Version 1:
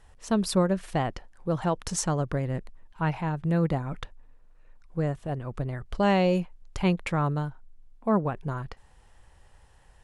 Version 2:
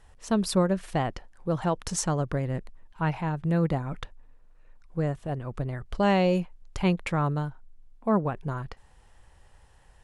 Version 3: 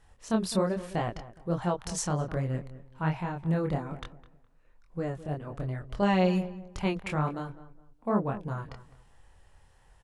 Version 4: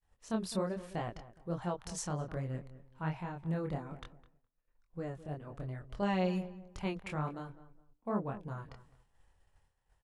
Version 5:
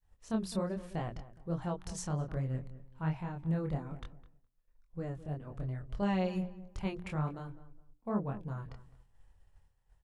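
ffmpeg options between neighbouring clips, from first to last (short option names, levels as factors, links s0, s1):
-af anull
-filter_complex "[0:a]flanger=delay=22.5:depth=4.8:speed=1.2,asplit=2[s0][s1];[s1]adelay=208,lowpass=f=1600:p=1,volume=0.178,asplit=2[s2][s3];[s3]adelay=208,lowpass=f=1600:p=1,volume=0.29,asplit=2[s4][s5];[s5]adelay=208,lowpass=f=1600:p=1,volume=0.29[s6];[s0][s2][s4][s6]amix=inputs=4:normalize=0"
-af "agate=range=0.0224:threshold=0.00282:ratio=3:detection=peak,volume=0.422"
-af "lowshelf=f=190:g=9.5,bandreject=f=60:t=h:w=6,bandreject=f=120:t=h:w=6,bandreject=f=180:t=h:w=6,bandreject=f=240:t=h:w=6,bandreject=f=300:t=h:w=6,bandreject=f=360:t=h:w=6,volume=0.794"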